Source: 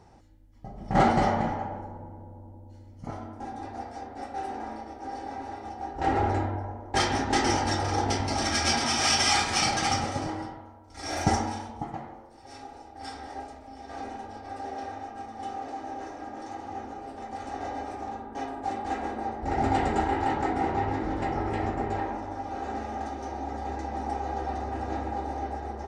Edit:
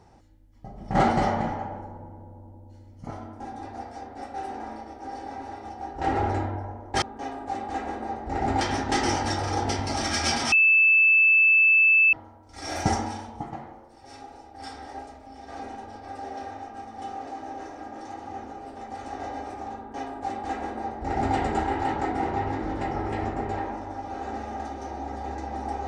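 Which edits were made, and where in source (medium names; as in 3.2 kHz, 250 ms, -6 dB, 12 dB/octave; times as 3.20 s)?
8.93–10.54 s: bleep 2.63 kHz -14.5 dBFS
18.18–19.77 s: copy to 7.02 s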